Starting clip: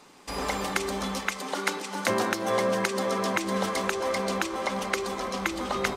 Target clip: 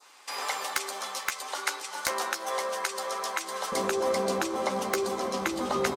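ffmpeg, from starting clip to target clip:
-filter_complex "[0:a]asetnsamples=n=441:p=0,asendcmd='3.72 highpass f 110',highpass=890,adynamicequalizer=threshold=0.00708:dfrequency=2300:dqfactor=0.81:tfrequency=2300:tqfactor=0.81:attack=5:release=100:ratio=0.375:range=3.5:mode=cutabove:tftype=bell,aeval=exprs='(mod(3.76*val(0)+1,2)-1)/3.76':c=same,asplit=2[s0][s1];[s1]adelay=13,volume=0.376[s2];[s0][s2]amix=inputs=2:normalize=0,volume=1.19"

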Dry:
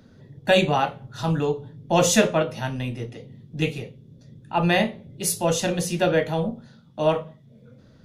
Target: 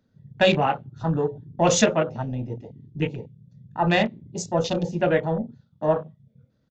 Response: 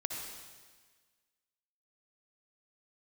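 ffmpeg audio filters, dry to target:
-af "atempo=1.2,afwtdn=0.0251,aresample=16000,aresample=44100"

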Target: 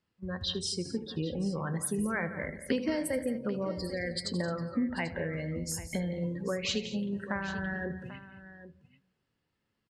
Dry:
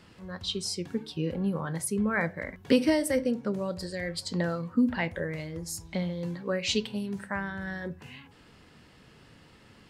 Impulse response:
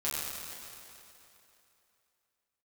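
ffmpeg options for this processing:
-filter_complex "[0:a]agate=range=0.282:threshold=0.00562:ratio=16:detection=peak,asplit=2[s0][s1];[1:a]atrim=start_sample=2205[s2];[s1][s2]afir=irnorm=-1:irlink=0,volume=0.075[s3];[s0][s3]amix=inputs=2:normalize=0,afftdn=nr=21:nf=-41,acompressor=threshold=0.0112:ratio=2.5,aecho=1:1:78|174|218|790:0.15|0.2|0.141|0.178,volume=1.78"

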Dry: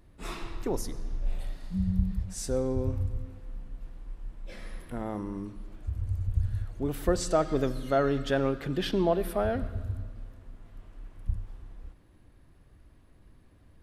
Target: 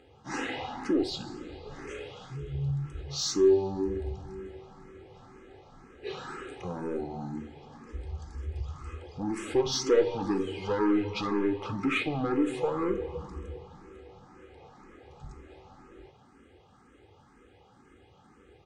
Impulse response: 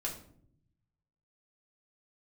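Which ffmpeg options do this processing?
-filter_complex "[0:a]highpass=190,lowpass=7600,asplit=2[s0][s1];[s1]acompressor=threshold=0.0112:ratio=6,volume=1.19[s2];[s0][s2]amix=inputs=2:normalize=0,asoftclip=type=tanh:threshold=0.0631,equalizer=f=540:t=o:w=0.91:g=2.5,aecho=1:1:1.8:0.48,asplit=2[s3][s4];[s4]lowshelf=f=240:g=-10.5[s5];[1:a]atrim=start_sample=2205,atrim=end_sample=3087[s6];[s5][s6]afir=irnorm=-1:irlink=0,volume=0.841[s7];[s3][s7]amix=inputs=2:normalize=0,asetrate=32667,aresample=44100,asplit=2[s8][s9];[s9]afreqshift=2[s10];[s8][s10]amix=inputs=2:normalize=1"

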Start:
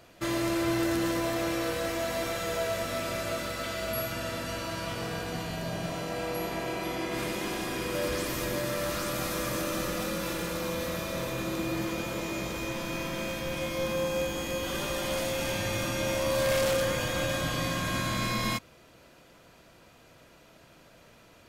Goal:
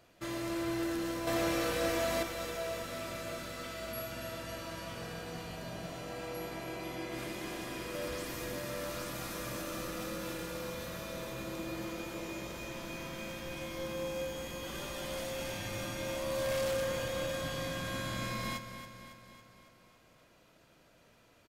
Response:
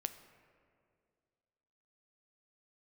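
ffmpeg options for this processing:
-filter_complex "[0:a]asettb=1/sr,asplit=3[s0][s1][s2];[s0]atrim=end=1.274[s3];[s1]atrim=start=1.27:end=2.23,asetpts=PTS-STARTPTS,afade=t=in:d=0.004:c=qsin,afade=t=out:st=0.956:d=0.004:c=qsin,acontrast=85[s4];[s2]atrim=start=2.226[s5];[s3][s4]acrossfade=d=0.004:c1=hsin:c2=qsin[s6];[s6][s5]acrossfade=d=0.004:c1=qsin:c2=hsin,asplit=2[s7][s8];[s8]aecho=0:1:277|554|831|1108|1385|1662|1939:0.316|0.18|0.103|0.0586|0.0334|0.019|0.0108[s9];[s7][s9]amix=inputs=2:normalize=0,volume=0.376"

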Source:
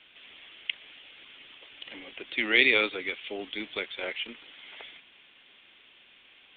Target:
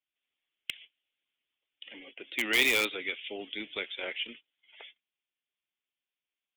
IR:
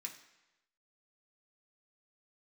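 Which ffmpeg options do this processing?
-filter_complex "[0:a]agate=range=0.126:threshold=0.00501:ratio=16:detection=peak,afftdn=nr=16:nf=-49,adynamicequalizer=threshold=0.0126:dfrequency=3200:dqfactor=1.4:tfrequency=3200:tqfactor=1.4:attack=5:release=100:ratio=0.375:range=2.5:mode=boostabove:tftype=bell,asplit=2[s0][s1];[s1]aeval=exprs='(mod(5.31*val(0)+1,2)-1)/5.31':c=same,volume=0.596[s2];[s0][s2]amix=inputs=2:normalize=0,volume=0.422"

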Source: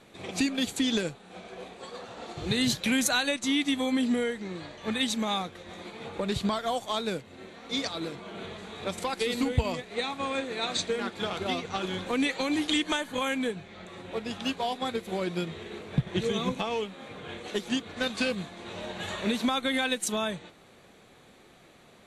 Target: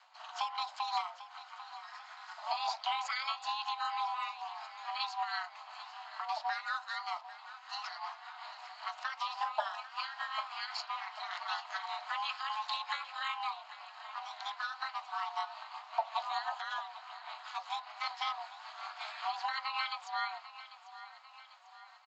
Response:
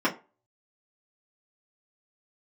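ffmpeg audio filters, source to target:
-filter_complex "[0:a]equalizer=f=63:w=2.4:g=-12.5,acrossover=split=4500[s0][s1];[s1]acompressor=threshold=0.002:ratio=6[s2];[s0][s2]amix=inputs=2:normalize=0,afreqshift=180,tremolo=f=5.2:d=0.45,afreqshift=470,aeval=exprs='val(0)*sin(2*PI*110*n/s)':c=same,aecho=1:1:795|1590|2385|3180|3975:0.178|0.096|0.0519|0.028|0.0151,asplit=2[s3][s4];[1:a]atrim=start_sample=2205,asetrate=32193,aresample=44100[s5];[s4][s5]afir=irnorm=-1:irlink=0,volume=0.0631[s6];[s3][s6]amix=inputs=2:normalize=0,aresample=16000,aresample=44100,volume=0.631"

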